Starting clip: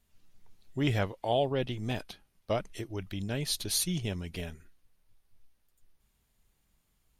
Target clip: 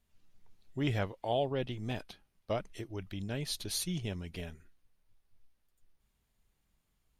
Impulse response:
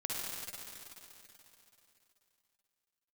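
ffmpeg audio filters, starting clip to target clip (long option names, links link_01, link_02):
-af "highshelf=frequency=5900:gain=-4.5,volume=-3.5dB"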